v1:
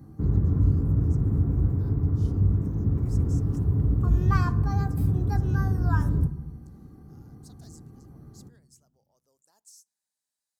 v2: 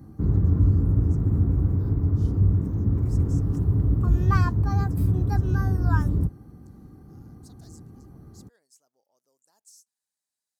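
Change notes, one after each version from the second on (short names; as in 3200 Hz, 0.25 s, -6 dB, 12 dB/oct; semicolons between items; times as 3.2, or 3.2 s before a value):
background +4.0 dB; reverb: off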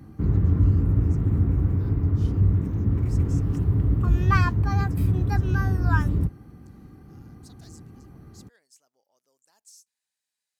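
master: add bell 2500 Hz +11.5 dB 1.3 oct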